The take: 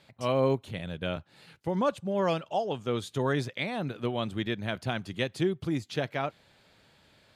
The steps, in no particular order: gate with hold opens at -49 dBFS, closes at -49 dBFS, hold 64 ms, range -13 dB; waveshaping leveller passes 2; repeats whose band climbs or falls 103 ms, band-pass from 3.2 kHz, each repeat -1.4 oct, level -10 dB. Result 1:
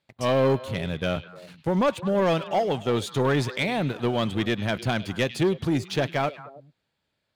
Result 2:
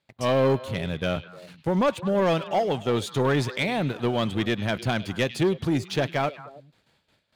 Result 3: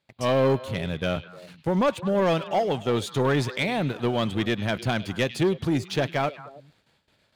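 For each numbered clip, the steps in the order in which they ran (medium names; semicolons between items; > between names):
gate with hold > waveshaping leveller > repeats whose band climbs or falls; waveshaping leveller > gate with hold > repeats whose band climbs or falls; waveshaping leveller > repeats whose band climbs or falls > gate with hold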